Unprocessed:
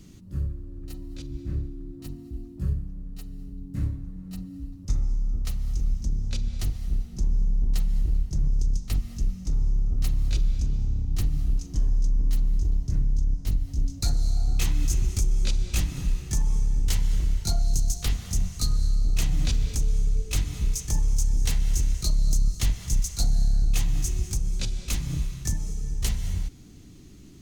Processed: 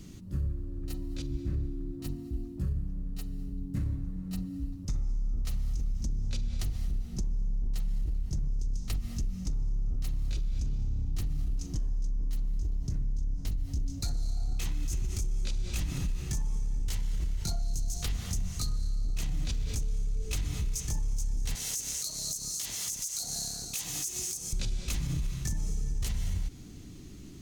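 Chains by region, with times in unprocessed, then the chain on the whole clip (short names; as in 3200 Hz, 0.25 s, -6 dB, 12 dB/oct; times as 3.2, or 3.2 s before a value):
21.55–24.53 HPF 110 Hz + tone controls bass -14 dB, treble +13 dB + compressor 4:1, threshold -31 dBFS
whole clip: limiter -23 dBFS; compressor, threshold -28 dBFS; gain +1.5 dB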